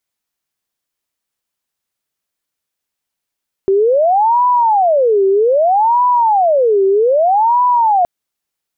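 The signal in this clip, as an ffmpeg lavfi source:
ffmpeg -f lavfi -i "aevalsrc='0.376*sin(2*PI*(687.5*t-301.5/(2*PI*0.63)*sin(2*PI*0.63*t)))':duration=4.37:sample_rate=44100" out.wav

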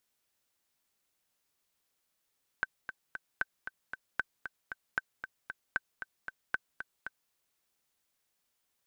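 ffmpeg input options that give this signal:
ffmpeg -f lavfi -i "aevalsrc='pow(10,(-16-9.5*gte(mod(t,3*60/230),60/230))/20)*sin(2*PI*1540*mod(t,60/230))*exp(-6.91*mod(t,60/230)/0.03)':duration=4.69:sample_rate=44100" out.wav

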